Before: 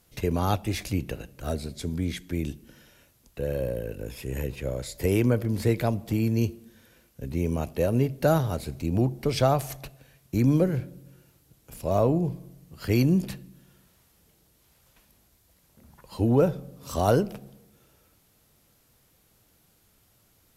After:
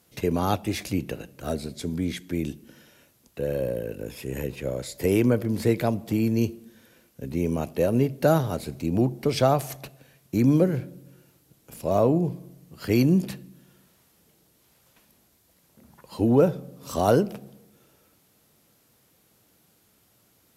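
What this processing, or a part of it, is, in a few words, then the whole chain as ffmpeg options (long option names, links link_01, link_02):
filter by subtraction: -filter_complex "[0:a]asplit=2[link_01][link_02];[link_02]lowpass=230,volume=-1[link_03];[link_01][link_03]amix=inputs=2:normalize=0,volume=1dB"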